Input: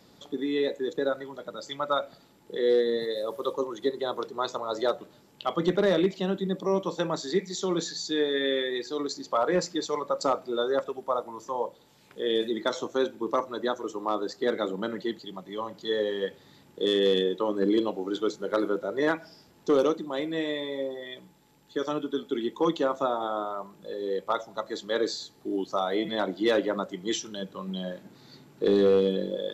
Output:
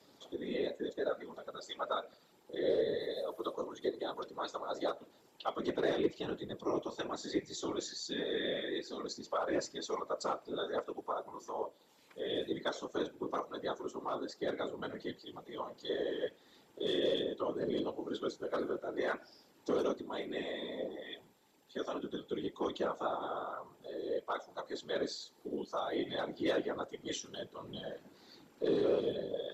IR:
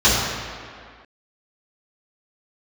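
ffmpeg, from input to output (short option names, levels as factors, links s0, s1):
-filter_complex "[0:a]highpass=f=240:w=0.5412,highpass=f=240:w=1.3066,asplit=2[s0][s1];[s1]acompressor=threshold=0.01:ratio=6,volume=0.75[s2];[s0][s2]amix=inputs=2:normalize=0,flanger=delay=3.6:depth=2.1:regen=-56:speed=1.4:shape=triangular,afftfilt=real='hypot(re,im)*cos(2*PI*random(0))':imag='hypot(re,im)*sin(2*PI*random(1))':win_size=512:overlap=0.75"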